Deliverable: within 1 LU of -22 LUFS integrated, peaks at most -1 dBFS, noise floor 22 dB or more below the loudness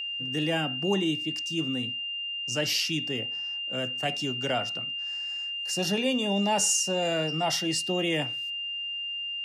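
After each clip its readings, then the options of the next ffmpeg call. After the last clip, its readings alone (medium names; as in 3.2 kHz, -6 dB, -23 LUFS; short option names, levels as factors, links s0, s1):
steady tone 2.8 kHz; tone level -31 dBFS; loudness -27.5 LUFS; peak level -13.5 dBFS; loudness target -22.0 LUFS
-> -af "bandreject=f=2800:w=30"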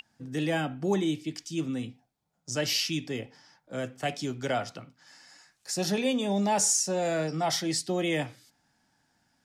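steady tone not found; loudness -29.5 LUFS; peak level -14.5 dBFS; loudness target -22.0 LUFS
-> -af "volume=2.37"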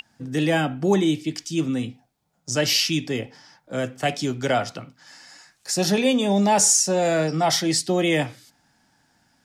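loudness -22.0 LUFS; peak level -7.0 dBFS; noise floor -68 dBFS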